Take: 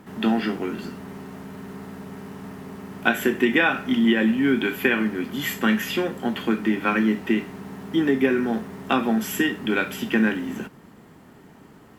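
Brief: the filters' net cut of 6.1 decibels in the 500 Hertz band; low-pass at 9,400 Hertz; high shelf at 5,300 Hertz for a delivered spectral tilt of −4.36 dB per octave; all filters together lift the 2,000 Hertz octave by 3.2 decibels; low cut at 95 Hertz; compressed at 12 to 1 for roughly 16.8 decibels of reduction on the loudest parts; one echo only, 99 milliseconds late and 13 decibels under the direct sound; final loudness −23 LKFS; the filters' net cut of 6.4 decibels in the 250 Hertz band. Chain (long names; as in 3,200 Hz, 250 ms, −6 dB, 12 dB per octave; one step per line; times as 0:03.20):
high-pass filter 95 Hz
low-pass filter 9,400 Hz
parametric band 250 Hz −6 dB
parametric band 500 Hz −6 dB
parametric band 2,000 Hz +4 dB
high-shelf EQ 5,300 Hz +4.5 dB
downward compressor 12 to 1, threshold −31 dBFS
single-tap delay 99 ms −13 dB
level +12.5 dB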